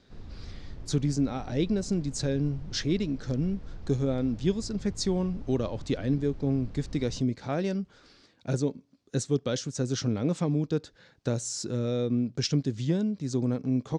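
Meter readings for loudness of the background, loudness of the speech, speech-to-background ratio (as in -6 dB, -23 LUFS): -46.5 LUFS, -29.5 LUFS, 17.0 dB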